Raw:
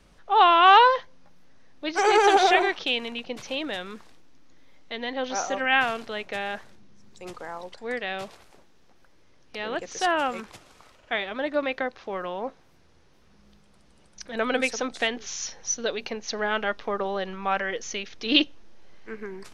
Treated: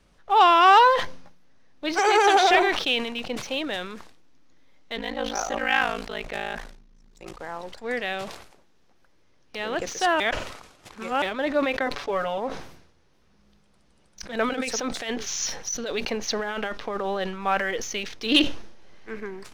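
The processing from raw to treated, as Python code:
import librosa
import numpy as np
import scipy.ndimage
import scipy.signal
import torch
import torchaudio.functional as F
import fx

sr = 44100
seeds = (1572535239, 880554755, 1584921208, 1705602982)

y = fx.highpass(x, sr, hz=400.0, slope=6, at=(1.99, 2.51))
y = fx.ring_mod(y, sr, carrier_hz=27.0, at=(4.96, 7.4))
y = fx.comb(y, sr, ms=7.0, depth=0.92, at=(11.86, 12.38))
y = fx.over_compress(y, sr, threshold_db=-30.0, ratio=-1.0, at=(14.49, 17.22))
y = fx.edit(y, sr, fx.reverse_span(start_s=10.2, length_s=1.02), tone=tone)
y = fx.leveller(y, sr, passes=1)
y = fx.sustainer(y, sr, db_per_s=71.0)
y = y * librosa.db_to_amplitude(-2.0)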